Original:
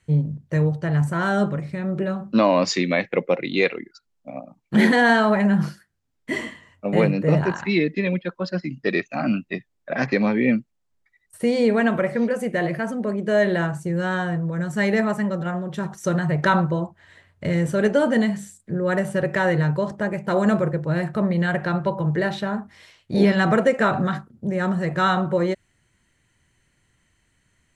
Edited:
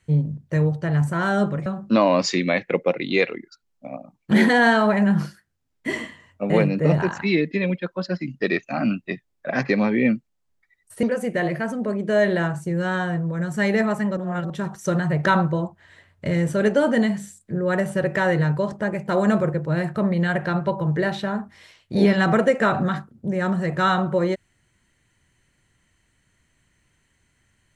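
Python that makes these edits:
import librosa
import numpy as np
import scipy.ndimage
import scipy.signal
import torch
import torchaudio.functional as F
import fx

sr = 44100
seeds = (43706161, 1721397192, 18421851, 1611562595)

y = fx.edit(x, sr, fx.cut(start_s=1.66, length_s=0.43),
    fx.cut(start_s=11.46, length_s=0.76),
    fx.reverse_span(start_s=15.36, length_s=0.33), tone=tone)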